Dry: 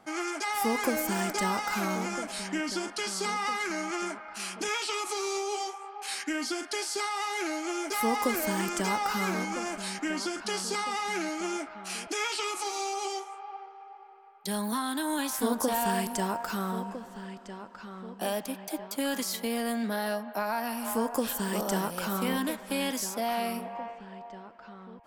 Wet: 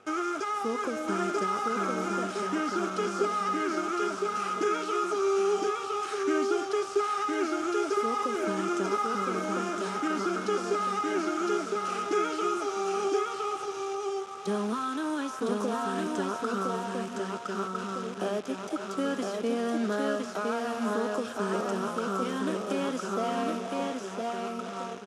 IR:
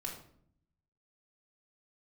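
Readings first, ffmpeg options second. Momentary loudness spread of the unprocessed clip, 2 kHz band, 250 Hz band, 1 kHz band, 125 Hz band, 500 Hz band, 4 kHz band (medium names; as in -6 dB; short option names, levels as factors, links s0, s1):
13 LU, -2.5 dB, +1.5 dB, +2.0 dB, no reading, +5.0 dB, -5.0 dB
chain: -filter_complex "[0:a]equalizer=f=1300:w=6.6:g=12.5,acrossover=split=1800[s0][s1];[s0]alimiter=level_in=1.33:limit=0.0631:level=0:latency=1:release=339,volume=0.75[s2];[s1]acompressor=threshold=0.00501:ratio=5[s3];[s2][s3]amix=inputs=2:normalize=0,acrusher=bits=8:dc=4:mix=0:aa=0.000001,highpass=130,equalizer=f=410:t=q:w=4:g=8,equalizer=f=860:t=q:w=4:g=-6,equalizer=f=2000:t=q:w=4:g=-6,equalizer=f=4400:t=q:w=4:g=-7,equalizer=f=7900:t=q:w=4:g=-4,lowpass=f=8100:w=0.5412,lowpass=f=8100:w=1.3066,asplit=2[s4][s5];[s5]aecho=0:1:1011:0.708[s6];[s4][s6]amix=inputs=2:normalize=0,volume=1.5"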